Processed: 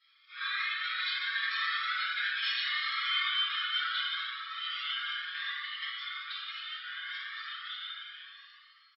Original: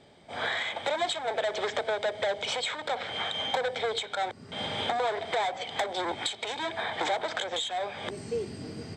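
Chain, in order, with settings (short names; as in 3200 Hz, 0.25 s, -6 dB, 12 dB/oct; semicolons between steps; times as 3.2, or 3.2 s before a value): ending faded out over 1.23 s; Doppler pass-by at 2.39, 12 m/s, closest 13 m; FFT band-pass 1100–5500 Hz; compressor 4:1, threshold -36 dBFS, peak gain reduction 6.5 dB; comb 6.1 ms, depth 92%; reverb RT60 3.0 s, pre-delay 3 ms, DRR -10 dB; cascading flanger rising 0.34 Hz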